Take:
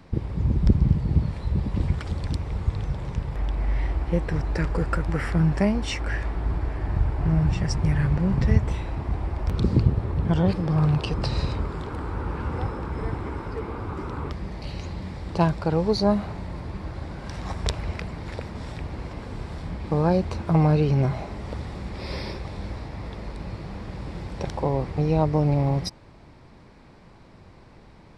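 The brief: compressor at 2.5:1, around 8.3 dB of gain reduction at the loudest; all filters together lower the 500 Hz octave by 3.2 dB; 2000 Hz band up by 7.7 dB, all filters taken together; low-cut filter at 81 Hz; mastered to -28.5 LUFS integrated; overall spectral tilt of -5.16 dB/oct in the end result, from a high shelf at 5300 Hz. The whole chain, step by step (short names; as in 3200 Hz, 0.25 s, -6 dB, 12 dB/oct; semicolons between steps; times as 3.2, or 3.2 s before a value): HPF 81 Hz; bell 500 Hz -4.5 dB; bell 2000 Hz +9 dB; high shelf 5300 Hz +5.5 dB; compressor 2.5:1, threshold -28 dBFS; gain +3.5 dB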